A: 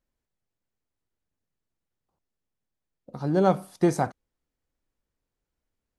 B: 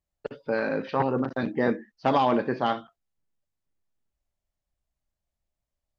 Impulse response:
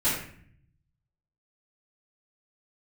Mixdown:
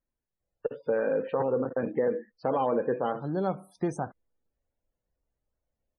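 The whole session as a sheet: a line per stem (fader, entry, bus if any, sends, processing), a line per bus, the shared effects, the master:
-4.5 dB, 0.00 s, no send, dry
-1.0 dB, 0.40 s, no send, bell 490 Hz +14.5 dB 0.31 oct; treble ducked by the level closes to 2300 Hz, closed at -20 dBFS; limiter -12.5 dBFS, peak gain reduction 8 dB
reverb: off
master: loudest bins only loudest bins 64; compressor 1.5:1, threshold -31 dBFS, peak gain reduction 5 dB

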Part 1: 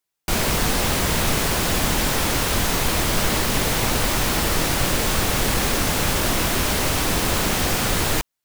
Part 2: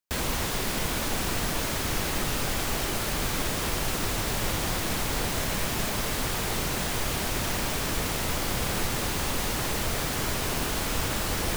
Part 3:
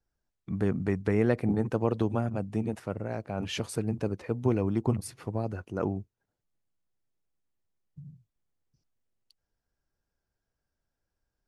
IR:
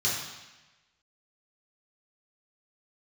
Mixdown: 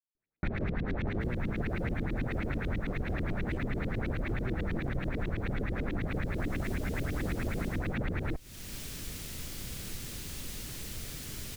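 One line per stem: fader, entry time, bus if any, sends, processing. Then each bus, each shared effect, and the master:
-5.0 dB, 0.15 s, no send, minimum comb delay 0.51 ms; tone controls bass +6 dB, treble -15 dB; LFO low-pass saw up 9.2 Hz 250–3300 Hz
-10.0 dB, 1.10 s, no send, bell 870 Hz -15 dB 2 oct; auto duck -17 dB, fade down 0.30 s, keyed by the third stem
-2.5 dB, 0.00 s, no send, treble ducked by the level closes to 370 Hz, closed at -26 dBFS; crossover distortion -46 dBFS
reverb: off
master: compressor 5:1, threshold -30 dBFS, peak gain reduction 12.5 dB

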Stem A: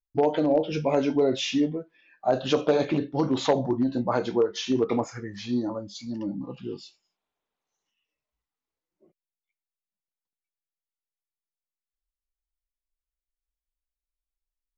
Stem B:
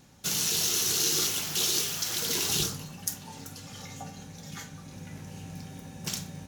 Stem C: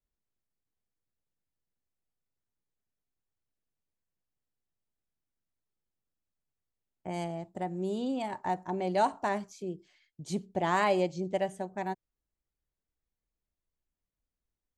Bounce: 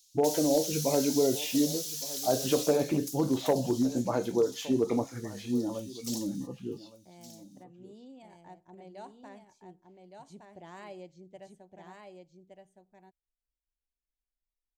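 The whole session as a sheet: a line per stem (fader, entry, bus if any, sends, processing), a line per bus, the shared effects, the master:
-2.5 dB, 0.00 s, no send, echo send -18 dB, high shelf 3600 Hz -10.5 dB
+1.5 dB, 0.00 s, no send, echo send -14.5 dB, inverse Chebyshev high-pass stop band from 1500 Hz, stop band 50 dB; compressor, threshold -31 dBFS, peak gain reduction 7.5 dB; soft clip -33 dBFS, distortion -11 dB
-17.5 dB, 0.00 s, no send, echo send -4.5 dB, dry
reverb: off
echo: echo 1.166 s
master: bell 1200 Hz -5 dB 1.3 oct

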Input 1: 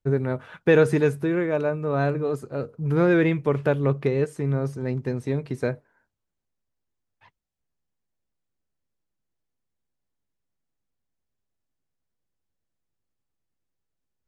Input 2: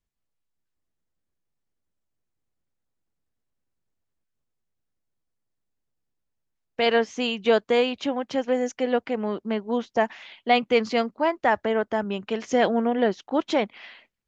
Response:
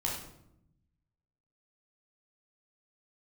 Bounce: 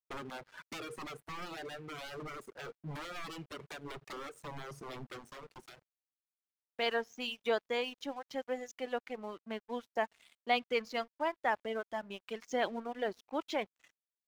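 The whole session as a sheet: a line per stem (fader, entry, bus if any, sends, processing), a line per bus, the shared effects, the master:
-2.5 dB, 0.05 s, send -13.5 dB, HPF 290 Hz 12 dB/oct; compressor 10:1, threshold -28 dBFS, peak gain reduction 14.5 dB; wavefolder -34.5 dBFS; auto duck -20 dB, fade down 1.70 s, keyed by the second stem
-9.0 dB, 0.00 s, send -21.5 dB, low shelf 360 Hz -8.5 dB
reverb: on, RT60 0.80 s, pre-delay 13 ms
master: reverb removal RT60 1.6 s; crossover distortion -56 dBFS

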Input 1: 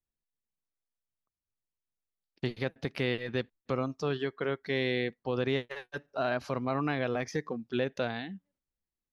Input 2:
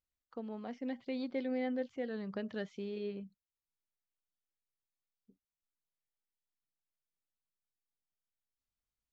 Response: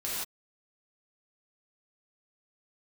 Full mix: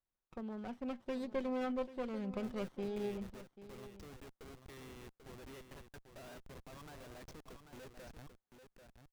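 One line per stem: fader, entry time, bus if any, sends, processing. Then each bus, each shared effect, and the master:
-12.5 dB, 0.00 s, no send, echo send -8 dB, harmonic-percussive split harmonic -12 dB; Schmitt trigger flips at -40 dBFS
-0.5 dB, 0.00 s, no send, echo send -15 dB, comb 5.4 ms, depth 37%; running maximum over 17 samples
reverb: off
echo: echo 0.79 s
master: dry

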